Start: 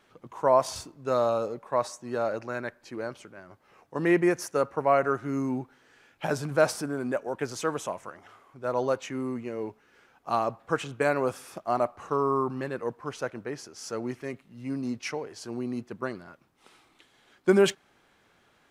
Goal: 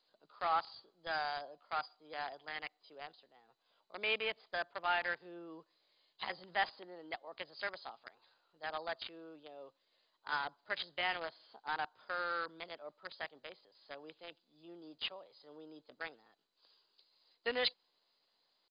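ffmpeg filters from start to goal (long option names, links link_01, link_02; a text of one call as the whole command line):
ffmpeg -i in.wav -filter_complex "[0:a]aderivative,asetrate=55563,aresample=44100,atempo=0.793701,acrossover=split=110|1100|4000[link_01][link_02][link_03][link_04];[link_03]acrusher=bits=7:mix=0:aa=0.000001[link_05];[link_01][link_02][link_05][link_04]amix=inputs=4:normalize=0,volume=7dB" -ar 16000 -c:a mp2 -b:a 64k out.mp2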